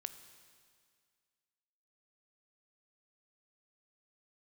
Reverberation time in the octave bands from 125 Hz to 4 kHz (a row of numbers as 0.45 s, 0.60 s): 2.0 s, 2.0 s, 2.0 s, 2.0 s, 2.0 s, 2.0 s